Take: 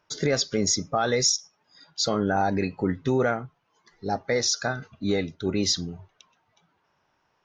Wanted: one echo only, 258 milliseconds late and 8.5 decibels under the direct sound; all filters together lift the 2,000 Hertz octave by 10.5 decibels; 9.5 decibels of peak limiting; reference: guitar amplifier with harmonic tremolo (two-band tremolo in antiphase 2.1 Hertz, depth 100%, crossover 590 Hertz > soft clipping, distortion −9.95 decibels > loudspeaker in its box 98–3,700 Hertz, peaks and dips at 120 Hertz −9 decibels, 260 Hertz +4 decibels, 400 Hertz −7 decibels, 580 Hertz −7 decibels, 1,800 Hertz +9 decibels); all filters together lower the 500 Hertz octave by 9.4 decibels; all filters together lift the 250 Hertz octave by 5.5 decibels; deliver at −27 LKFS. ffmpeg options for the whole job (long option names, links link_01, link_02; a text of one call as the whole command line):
ffmpeg -i in.wav -filter_complex "[0:a]equalizer=frequency=250:width_type=o:gain=8,equalizer=frequency=500:width_type=o:gain=-8.5,equalizer=frequency=2000:width_type=o:gain=8,alimiter=limit=-19dB:level=0:latency=1,aecho=1:1:258:0.376,acrossover=split=590[link_01][link_02];[link_01]aeval=exprs='val(0)*(1-1/2+1/2*cos(2*PI*2.1*n/s))':channel_layout=same[link_03];[link_02]aeval=exprs='val(0)*(1-1/2-1/2*cos(2*PI*2.1*n/s))':channel_layout=same[link_04];[link_03][link_04]amix=inputs=2:normalize=0,asoftclip=threshold=-31dB,highpass=98,equalizer=frequency=120:width_type=q:width=4:gain=-9,equalizer=frequency=260:width_type=q:width=4:gain=4,equalizer=frequency=400:width_type=q:width=4:gain=-7,equalizer=frequency=580:width_type=q:width=4:gain=-7,equalizer=frequency=1800:width_type=q:width=4:gain=9,lowpass=frequency=3700:width=0.5412,lowpass=frequency=3700:width=1.3066,volume=10.5dB" out.wav